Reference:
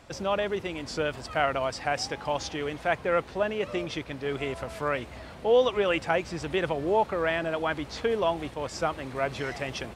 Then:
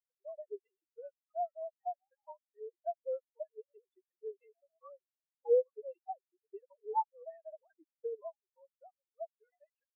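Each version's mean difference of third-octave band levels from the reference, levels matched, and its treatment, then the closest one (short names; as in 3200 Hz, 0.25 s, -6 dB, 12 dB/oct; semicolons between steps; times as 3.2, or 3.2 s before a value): 25.5 dB: sine-wave speech; comb 1.1 ms, depth 38%; compressor 5:1, threshold -34 dBFS, peak gain reduction 16.5 dB; spectral expander 4:1; gain +6.5 dB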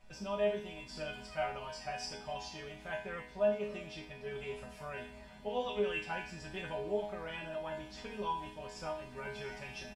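4.0 dB: resonant low shelf 170 Hz +10 dB, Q 1.5; comb 5.2 ms, depth 82%; dynamic EQ 1900 Hz, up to -5 dB, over -46 dBFS, Q 4.8; resonator bank G#3 minor, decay 0.51 s; gain +7.5 dB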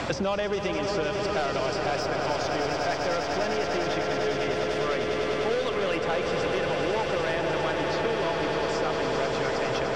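7.0 dB: Chebyshev low-pass 5500 Hz, order 2; soft clip -23 dBFS, distortion -12 dB; on a send: swelling echo 0.1 s, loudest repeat 8, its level -8.5 dB; on the sum: three-band squash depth 100%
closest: second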